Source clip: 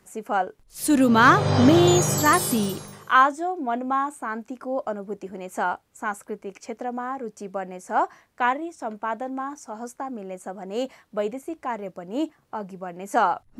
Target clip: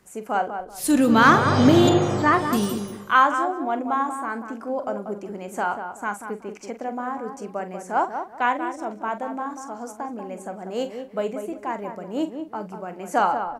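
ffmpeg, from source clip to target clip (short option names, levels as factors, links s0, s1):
-filter_complex "[0:a]asettb=1/sr,asplit=3[s0][s1][s2];[s0]atrim=end=1.894[s3];[s1]atrim=start=1.89:end=2.53,asetpts=PTS-STARTPTS,afade=t=in:d=0.004:c=qsin,afade=t=out:st=0.636:d=0.004:c=qsin,lowpass=2600[s4];[s2]atrim=start=2.526[s5];[s3][s4]acrossfade=d=0.004:c1=hsin:c2=qsin[s6];[s6][s5]acrossfade=d=0.004:c1=qsin:c2=hsin,asplit=2[s7][s8];[s8]adelay=44,volume=0.266[s9];[s7][s9]amix=inputs=2:normalize=0,asplit=2[s10][s11];[s11]adelay=188,lowpass=f=1500:p=1,volume=0.447,asplit=2[s12][s13];[s13]adelay=188,lowpass=f=1500:p=1,volume=0.27,asplit=2[s14][s15];[s15]adelay=188,lowpass=f=1500:p=1,volume=0.27[s16];[s10][s12][s14][s16]amix=inputs=4:normalize=0"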